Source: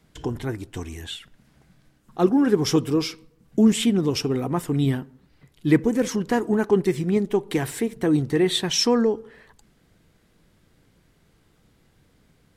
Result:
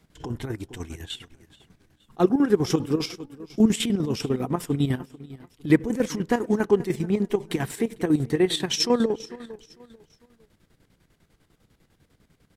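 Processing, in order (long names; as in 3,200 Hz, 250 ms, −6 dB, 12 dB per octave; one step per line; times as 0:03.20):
repeating echo 448 ms, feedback 32%, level −18.5 dB
square-wave tremolo 10 Hz, depth 65%, duty 55%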